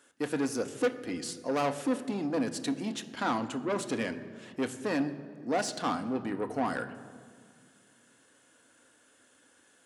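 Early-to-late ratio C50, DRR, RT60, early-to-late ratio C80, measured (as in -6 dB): 13.0 dB, 8.0 dB, 1.9 s, 14.0 dB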